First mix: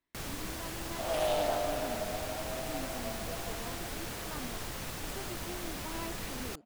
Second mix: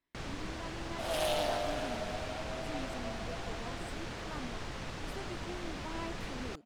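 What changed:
first sound: add high-frequency loss of the air 110 metres
second sound: add tilt shelving filter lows −4.5 dB, about 1,300 Hz

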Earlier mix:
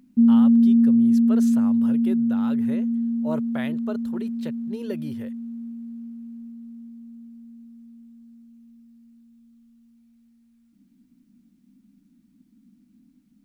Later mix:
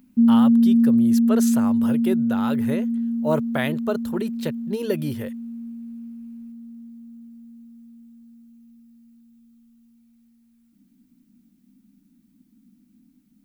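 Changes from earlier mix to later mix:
speech +8.0 dB
master: add high-shelf EQ 11,000 Hz +11 dB

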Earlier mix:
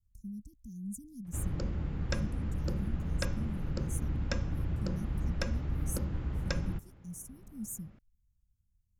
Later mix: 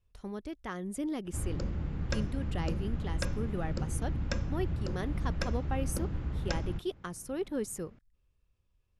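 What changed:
speech: remove Chebyshev band-stop filter 220–6,300 Hz, order 4
master: add Butterworth low-pass 12,000 Hz 96 dB per octave

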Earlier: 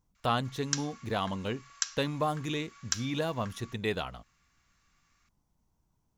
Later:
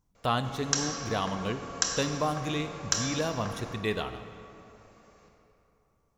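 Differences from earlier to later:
background: remove high-pass filter 1,300 Hz 24 dB per octave
reverb: on, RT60 3.0 s

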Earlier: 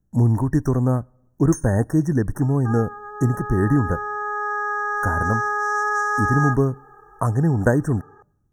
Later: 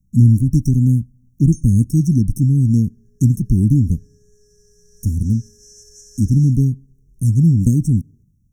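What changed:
speech +8.0 dB
first sound: add high-frequency loss of the air 57 metres
master: add elliptic band-stop filter 230–4,800 Hz, stop band 70 dB

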